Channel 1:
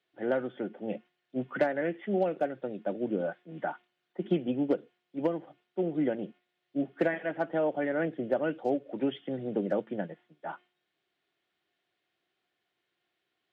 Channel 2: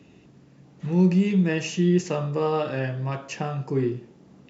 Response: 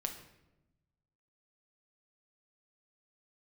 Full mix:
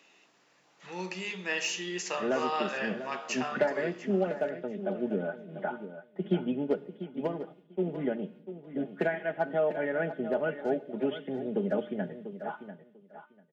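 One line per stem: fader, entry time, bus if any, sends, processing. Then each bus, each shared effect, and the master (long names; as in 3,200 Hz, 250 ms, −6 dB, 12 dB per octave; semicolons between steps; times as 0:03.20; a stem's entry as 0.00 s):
−3.5 dB, 2.00 s, send −11 dB, echo send −9.5 dB, noise gate with hold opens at −54 dBFS; comb filter 4.8 ms, depth 65%; hum removal 301.2 Hz, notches 27
−3.0 dB, 0.00 s, send −3 dB, echo send −14 dB, high-pass filter 910 Hz 12 dB per octave; de-essing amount 70%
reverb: on, RT60 0.95 s, pre-delay 6 ms
echo: repeating echo 694 ms, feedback 16%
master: no processing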